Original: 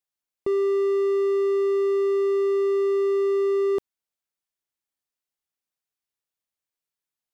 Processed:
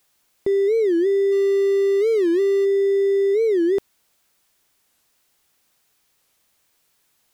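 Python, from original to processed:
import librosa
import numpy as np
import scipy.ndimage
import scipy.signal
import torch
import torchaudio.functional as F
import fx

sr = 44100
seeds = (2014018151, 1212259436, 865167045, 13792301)

y = fx.high_shelf(x, sr, hz=2500.0, db=9.5, at=(1.31, 2.64), fade=0.02)
y = fx.power_curve(y, sr, exponent=0.7)
y = fx.record_warp(y, sr, rpm=45.0, depth_cents=250.0)
y = F.gain(torch.from_numpy(y), 2.5).numpy()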